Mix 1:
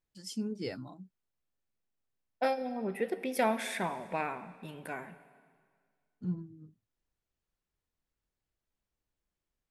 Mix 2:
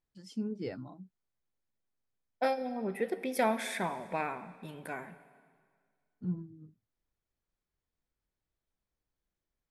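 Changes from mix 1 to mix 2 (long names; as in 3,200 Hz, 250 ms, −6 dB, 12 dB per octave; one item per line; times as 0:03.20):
first voice: add low-pass filter 1,700 Hz 6 dB per octave
second voice: add notch filter 2,800 Hz, Q 11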